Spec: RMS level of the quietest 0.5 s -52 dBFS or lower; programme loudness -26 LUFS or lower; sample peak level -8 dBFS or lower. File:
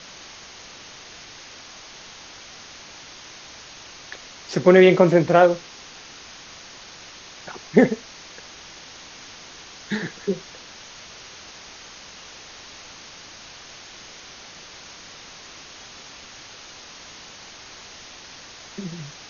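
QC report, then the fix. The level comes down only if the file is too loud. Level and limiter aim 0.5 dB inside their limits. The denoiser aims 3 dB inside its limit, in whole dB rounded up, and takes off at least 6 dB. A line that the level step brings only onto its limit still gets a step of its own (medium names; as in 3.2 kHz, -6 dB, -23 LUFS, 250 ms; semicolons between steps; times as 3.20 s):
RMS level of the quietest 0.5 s -43 dBFS: fail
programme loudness -19.0 LUFS: fail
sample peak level -2.5 dBFS: fail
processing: noise reduction 6 dB, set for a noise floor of -43 dBFS; trim -7.5 dB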